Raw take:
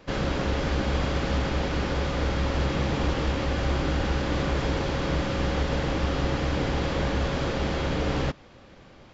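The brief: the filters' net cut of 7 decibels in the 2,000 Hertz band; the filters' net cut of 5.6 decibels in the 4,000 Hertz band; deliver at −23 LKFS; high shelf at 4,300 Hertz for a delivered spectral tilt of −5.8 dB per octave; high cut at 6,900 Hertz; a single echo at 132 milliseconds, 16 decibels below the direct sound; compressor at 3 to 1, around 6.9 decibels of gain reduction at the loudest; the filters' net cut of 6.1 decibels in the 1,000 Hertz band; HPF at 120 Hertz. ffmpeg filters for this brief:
ffmpeg -i in.wav -af "highpass=120,lowpass=6900,equalizer=frequency=1000:width_type=o:gain=-6.5,equalizer=frequency=2000:width_type=o:gain=-6,equalizer=frequency=4000:width_type=o:gain=-6.5,highshelf=frequency=4300:gain=4,acompressor=threshold=-35dB:ratio=3,aecho=1:1:132:0.158,volume=14dB" out.wav

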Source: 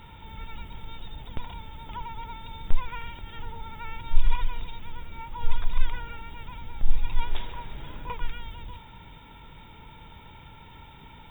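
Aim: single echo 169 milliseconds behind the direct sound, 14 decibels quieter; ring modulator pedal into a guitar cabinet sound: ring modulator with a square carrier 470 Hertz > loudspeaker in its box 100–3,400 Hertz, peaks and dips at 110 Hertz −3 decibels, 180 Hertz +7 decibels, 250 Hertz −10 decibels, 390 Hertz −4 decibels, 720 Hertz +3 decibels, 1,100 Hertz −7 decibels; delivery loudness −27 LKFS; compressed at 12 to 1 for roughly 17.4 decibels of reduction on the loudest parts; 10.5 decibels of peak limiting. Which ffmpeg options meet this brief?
ffmpeg -i in.wav -af "acompressor=threshold=-26dB:ratio=12,alimiter=level_in=5.5dB:limit=-24dB:level=0:latency=1,volume=-5.5dB,aecho=1:1:169:0.2,aeval=exprs='val(0)*sgn(sin(2*PI*470*n/s))':channel_layout=same,highpass=100,equalizer=frequency=110:width_type=q:width=4:gain=-3,equalizer=frequency=180:width_type=q:width=4:gain=7,equalizer=frequency=250:width_type=q:width=4:gain=-10,equalizer=frequency=390:width_type=q:width=4:gain=-4,equalizer=frequency=720:width_type=q:width=4:gain=3,equalizer=frequency=1100:width_type=q:width=4:gain=-7,lowpass=frequency=3400:width=0.5412,lowpass=frequency=3400:width=1.3066,volume=11dB" out.wav

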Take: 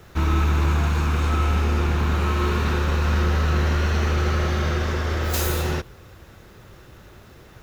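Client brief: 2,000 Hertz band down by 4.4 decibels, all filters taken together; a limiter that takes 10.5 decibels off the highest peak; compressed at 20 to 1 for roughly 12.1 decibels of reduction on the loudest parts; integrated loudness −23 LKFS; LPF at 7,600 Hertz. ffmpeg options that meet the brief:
ffmpeg -i in.wav -af "lowpass=7600,equalizer=frequency=2000:width_type=o:gain=-6,acompressor=threshold=-29dB:ratio=20,volume=18dB,alimiter=limit=-14dB:level=0:latency=1" out.wav

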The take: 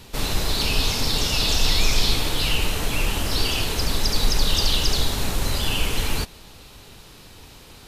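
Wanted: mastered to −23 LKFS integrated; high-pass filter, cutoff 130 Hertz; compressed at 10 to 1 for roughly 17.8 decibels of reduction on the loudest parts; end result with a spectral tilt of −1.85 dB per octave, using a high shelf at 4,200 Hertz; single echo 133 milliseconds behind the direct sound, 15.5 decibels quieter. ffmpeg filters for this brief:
ffmpeg -i in.wav -af "highpass=130,highshelf=frequency=4200:gain=7,acompressor=threshold=-35dB:ratio=10,aecho=1:1:133:0.168,volume=13dB" out.wav

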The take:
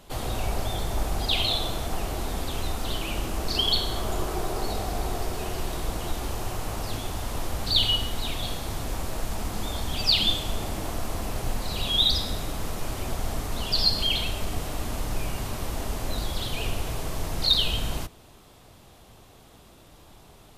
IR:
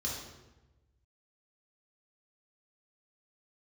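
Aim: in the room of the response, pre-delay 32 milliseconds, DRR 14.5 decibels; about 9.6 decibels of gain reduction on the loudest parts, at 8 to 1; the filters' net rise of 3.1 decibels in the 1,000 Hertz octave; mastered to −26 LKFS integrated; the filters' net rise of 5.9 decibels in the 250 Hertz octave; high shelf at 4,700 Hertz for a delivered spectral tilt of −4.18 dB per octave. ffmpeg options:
-filter_complex "[0:a]equalizer=frequency=250:width_type=o:gain=7.5,equalizer=frequency=1000:width_type=o:gain=3.5,highshelf=frequency=4700:gain=3.5,acompressor=threshold=-25dB:ratio=8,asplit=2[link_01][link_02];[1:a]atrim=start_sample=2205,adelay=32[link_03];[link_02][link_03]afir=irnorm=-1:irlink=0,volume=-17.5dB[link_04];[link_01][link_04]amix=inputs=2:normalize=0,volume=4.5dB"

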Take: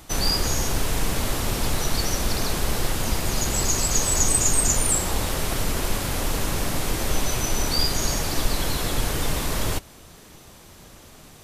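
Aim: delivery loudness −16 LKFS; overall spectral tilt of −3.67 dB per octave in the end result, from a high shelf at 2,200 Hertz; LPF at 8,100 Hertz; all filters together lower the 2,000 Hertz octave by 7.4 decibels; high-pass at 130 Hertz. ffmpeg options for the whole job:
ffmpeg -i in.wav -af "highpass=130,lowpass=8100,equalizer=frequency=2000:width_type=o:gain=-6,highshelf=frequency=2200:gain=-6.5,volume=14dB" out.wav

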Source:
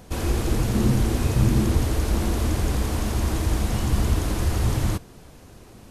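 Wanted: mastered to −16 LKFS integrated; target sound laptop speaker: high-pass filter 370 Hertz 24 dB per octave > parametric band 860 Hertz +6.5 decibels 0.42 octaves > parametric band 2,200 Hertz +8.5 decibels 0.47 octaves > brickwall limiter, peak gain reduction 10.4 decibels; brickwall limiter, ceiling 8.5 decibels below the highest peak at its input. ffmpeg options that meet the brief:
ffmpeg -i in.wav -af "alimiter=limit=-16.5dB:level=0:latency=1,highpass=frequency=370:width=0.5412,highpass=frequency=370:width=1.3066,equalizer=frequency=860:width_type=o:width=0.42:gain=6.5,equalizer=frequency=2200:width_type=o:width=0.47:gain=8.5,volume=22.5dB,alimiter=limit=-7.5dB:level=0:latency=1" out.wav

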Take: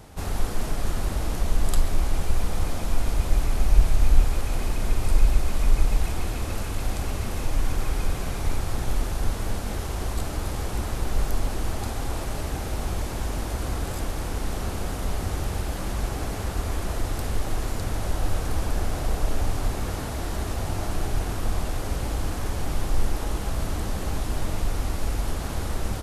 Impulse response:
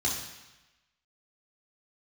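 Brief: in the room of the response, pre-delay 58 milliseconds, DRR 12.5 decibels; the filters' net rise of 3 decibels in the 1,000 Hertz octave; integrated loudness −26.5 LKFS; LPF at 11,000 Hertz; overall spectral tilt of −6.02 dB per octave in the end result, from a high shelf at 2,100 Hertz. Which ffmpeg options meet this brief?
-filter_complex "[0:a]lowpass=11000,equalizer=frequency=1000:width_type=o:gain=5,highshelf=frequency=2100:gain=-5,asplit=2[link_01][link_02];[1:a]atrim=start_sample=2205,adelay=58[link_03];[link_02][link_03]afir=irnorm=-1:irlink=0,volume=-20dB[link_04];[link_01][link_04]amix=inputs=2:normalize=0,volume=2.5dB"

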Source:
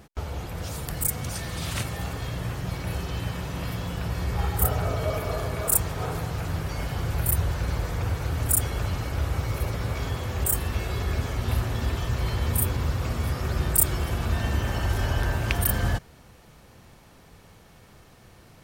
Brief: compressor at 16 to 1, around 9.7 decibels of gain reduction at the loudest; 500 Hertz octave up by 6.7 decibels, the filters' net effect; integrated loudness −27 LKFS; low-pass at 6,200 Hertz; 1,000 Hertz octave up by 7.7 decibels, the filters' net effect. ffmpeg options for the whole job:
ffmpeg -i in.wav -af "lowpass=6200,equalizer=frequency=500:width_type=o:gain=6,equalizer=frequency=1000:width_type=o:gain=8,acompressor=threshold=-28dB:ratio=16,volume=6.5dB" out.wav

